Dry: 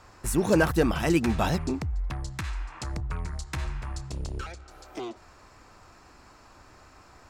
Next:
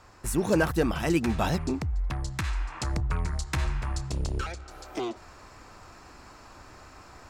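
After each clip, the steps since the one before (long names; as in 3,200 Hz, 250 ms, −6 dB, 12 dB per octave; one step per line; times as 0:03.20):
speech leveller within 4 dB 2 s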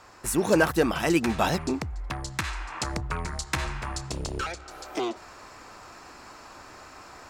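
low-shelf EQ 160 Hz −12 dB
level +4.5 dB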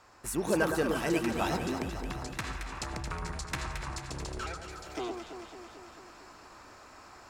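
delay that swaps between a low-pass and a high-pass 111 ms, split 1,600 Hz, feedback 81%, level −5 dB
level −7.5 dB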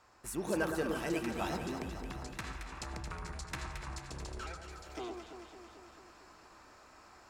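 convolution reverb RT60 1.2 s, pre-delay 7 ms, DRR 12.5 dB
level −6 dB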